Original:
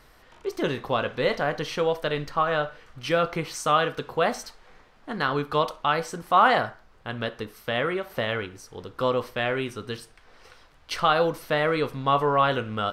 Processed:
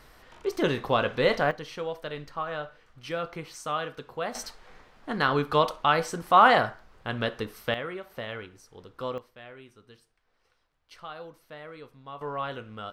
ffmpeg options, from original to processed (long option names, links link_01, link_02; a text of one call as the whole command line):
ffmpeg -i in.wav -af "asetnsamples=nb_out_samples=441:pad=0,asendcmd='1.51 volume volume -9dB;4.35 volume volume 1dB;7.74 volume volume -9dB;9.18 volume volume -20dB;12.21 volume volume -11.5dB',volume=1dB" out.wav